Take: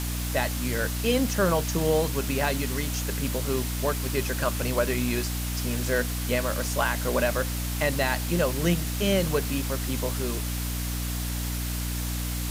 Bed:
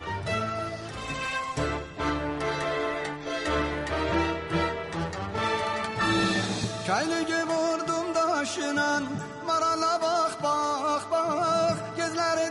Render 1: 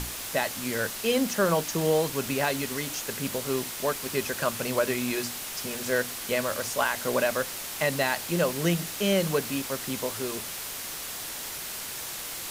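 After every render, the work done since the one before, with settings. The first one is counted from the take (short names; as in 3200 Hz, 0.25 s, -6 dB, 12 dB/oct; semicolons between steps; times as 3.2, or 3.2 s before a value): notches 60/120/180/240/300 Hz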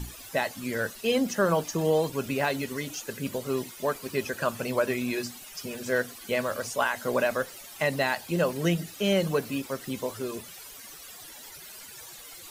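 denoiser 15 dB, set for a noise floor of -37 dBFS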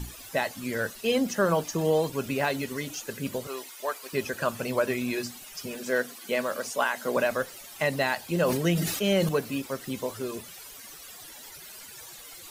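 3.47–4.13 HPF 610 Hz; 5.75–7.17 HPF 160 Hz 24 dB/oct; 8.34–9.29 sustainer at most 41 dB/s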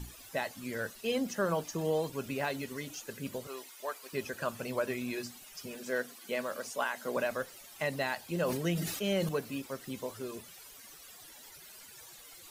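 gain -7 dB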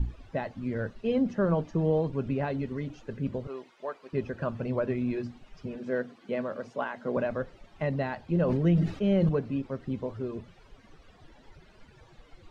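LPF 4100 Hz 12 dB/oct; tilt -4 dB/oct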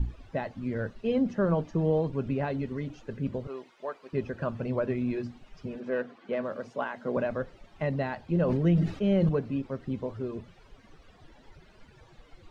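5.8–6.44 overdrive pedal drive 11 dB, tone 1500 Hz, clips at -19.5 dBFS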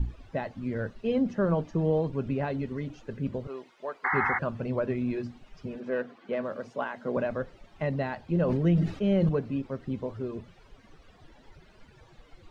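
4.04–4.39 painted sound noise 730–2200 Hz -27 dBFS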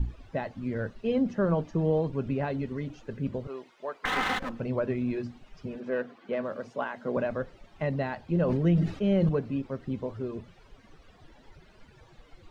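4.05–4.6 minimum comb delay 3.9 ms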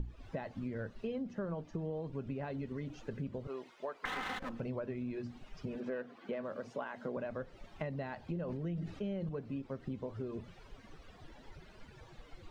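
compressor 6:1, threshold -37 dBFS, peak gain reduction 16 dB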